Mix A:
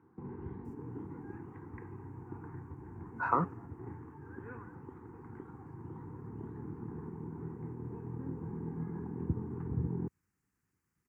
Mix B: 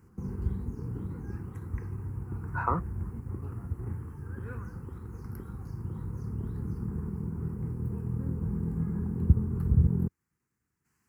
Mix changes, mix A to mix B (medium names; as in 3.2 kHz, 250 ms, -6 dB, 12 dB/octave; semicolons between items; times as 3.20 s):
speech: entry -0.65 s; background: remove cabinet simulation 200–2200 Hz, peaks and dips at 200 Hz -9 dB, 300 Hz +4 dB, 560 Hz -9 dB, 880 Hz +6 dB, 1.3 kHz -7 dB